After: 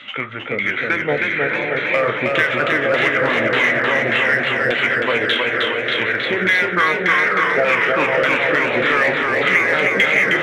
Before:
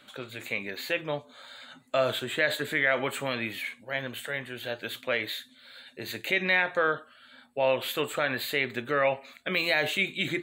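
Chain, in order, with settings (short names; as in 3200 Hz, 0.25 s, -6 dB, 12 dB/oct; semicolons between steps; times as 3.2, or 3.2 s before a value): on a send: diffused feedback echo 0.569 s, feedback 51%, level -6 dB; on the sum: LFO low-pass saw down 1.7 Hz 560–4500 Hz; bell 2300 Hz +10.5 dB 0.69 oct; formant shift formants -2 st; in parallel at -8 dB: hard clip -20 dBFS, distortion -6 dB; on the sum: compressor 3:1, threshold -24 dBFS, peak gain reduction 12 dB; warbling echo 0.314 s, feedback 68%, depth 84 cents, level -3.5 dB; gain +7 dB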